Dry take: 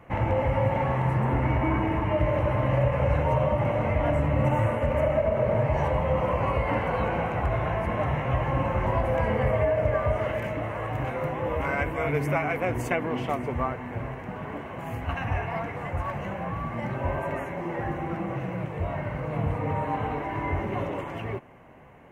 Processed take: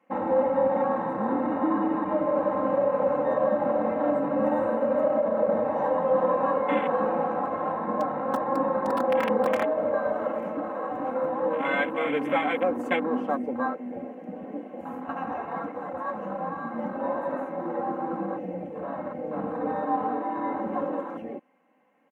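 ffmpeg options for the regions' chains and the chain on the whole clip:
ffmpeg -i in.wav -filter_complex "[0:a]asettb=1/sr,asplit=3[link_01][link_02][link_03];[link_01]atrim=end=7.724[link_04];[link_02]atrim=start=7.72:end=9.63,asetpts=PTS-STARTPTS,afade=type=in:duration=0.004:curve=qsin,afade=type=out:start_time=1.906:duration=0.004:curve=qsin,lowpass=2400,aeval=exprs='(mod(5.96*val(0)+1,2)-1)/5.96':channel_layout=same[link_05];[link_03]atrim=start=9.626[link_06];[link_04][link_05]acrossfade=duration=0.004:curve1=hsin:curve2=qsin[link_07];[link_07][link_06]acrossfade=duration=0.004:curve1=qsin:curve2=hsin,highpass=frequency=190:width=0.5412,highpass=frequency=190:width=1.3066,afwtdn=0.0282,aecho=1:1:3.8:0.79" out.wav

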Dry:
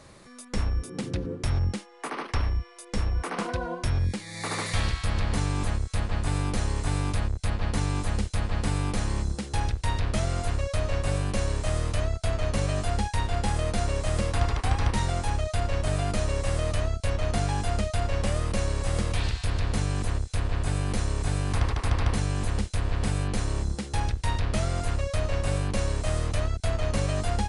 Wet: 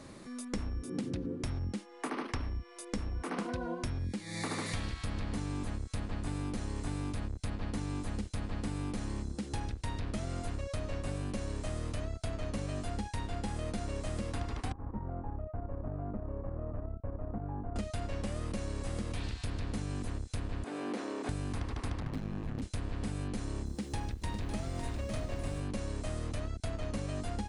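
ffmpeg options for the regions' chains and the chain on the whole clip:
ffmpeg -i in.wav -filter_complex "[0:a]asettb=1/sr,asplit=3[link_01][link_02][link_03];[link_01]atrim=end=14.724[link_04];[link_02]atrim=start=14.72:end=17.76,asetpts=PTS-STARTPTS,afade=type=in:duration=0.004:curve=qsin,afade=type=out:start_time=3.036:duration=0.004:curve=qsin,agate=range=-9dB:threshold=-24dB:ratio=16:release=100:detection=peak,lowpass=frequency=1200:width=0.5412,lowpass=frequency=1200:width=1.3066,acompressor=threshold=-29dB:ratio=4:attack=3.2:release=140:knee=1:detection=peak[link_05];[link_03]atrim=start=17.756[link_06];[link_04][link_05]acrossfade=duration=0.004:curve1=hsin:curve2=qsin[link_07];[link_07][link_06]acrossfade=duration=0.004:curve1=qsin:curve2=hsin,asettb=1/sr,asplit=3[link_08][link_09][link_10];[link_08]atrim=end=20.644[link_11];[link_09]atrim=start=20.64:end=21.29,asetpts=PTS-STARTPTS,afade=type=in:duration=0.004:curve=qsin,afade=type=out:start_time=0.646:duration=0.004:curve=qsin,highpass=frequency=280:width=0.5412,highpass=frequency=280:width=1.3066,aemphasis=mode=reproduction:type=75kf[link_12];[link_10]atrim=start=21.286[link_13];[link_11][link_12]acrossfade=duration=0.004:curve1=hsin:curve2=qsin[link_14];[link_14][link_13]acrossfade=duration=0.004:curve1=qsin:curve2=hsin,asettb=1/sr,asplit=3[link_15][link_16][link_17];[link_15]atrim=end=22.004[link_18];[link_16]atrim=start=22:end=22.62,asetpts=PTS-STARTPTS,afade=type=in:duration=0.004:curve=qsin,afade=type=out:start_time=0.616:duration=0.004:curve=qsin,aeval=exprs='val(0)*sin(2*PI*53*n/s)':channel_layout=same,adynamicsmooth=sensitivity=8:basefreq=1600[link_19];[link_17]atrim=start=22.616[link_20];[link_18][link_19]acrossfade=duration=0.004:curve1=hsin:curve2=qsin[link_21];[link_21][link_20]acrossfade=duration=0.004:curve1=qsin:curve2=hsin,asettb=1/sr,asplit=3[link_22][link_23][link_24];[link_22]atrim=end=23.664[link_25];[link_23]atrim=start=23.66:end=25.6,asetpts=PTS-STARTPTS,afade=type=in:duration=0.004:curve=qsin,afade=type=out:start_time=1.936:duration=0.004:curve=qsin,bandreject=frequency=1400:width=21,acrusher=bits=8:mix=0:aa=0.5,aecho=1:1:554:0.501,atrim=end_sample=85554[link_26];[link_24]atrim=start=25.596[link_27];[link_25][link_26]acrossfade=duration=0.004:curve1=hsin:curve2=qsin[link_28];[link_28][link_27]acrossfade=duration=0.004:curve1=qsin:curve2=hsin,equalizer=frequency=260:width=1.5:gain=10,acompressor=threshold=-31dB:ratio=6,volume=-2dB" out.wav

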